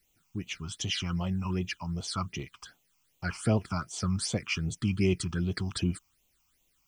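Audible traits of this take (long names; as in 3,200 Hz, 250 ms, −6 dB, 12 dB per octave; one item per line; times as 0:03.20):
a quantiser's noise floor 12 bits, dither triangular
phaser sweep stages 8, 2.6 Hz, lowest notch 490–1,600 Hz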